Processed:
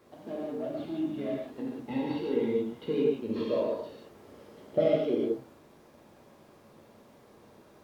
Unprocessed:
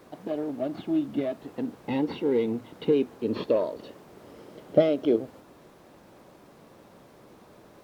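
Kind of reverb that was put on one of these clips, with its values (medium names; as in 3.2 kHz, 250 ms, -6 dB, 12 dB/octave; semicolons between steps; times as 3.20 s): gated-style reverb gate 210 ms flat, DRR -4.5 dB; trim -9.5 dB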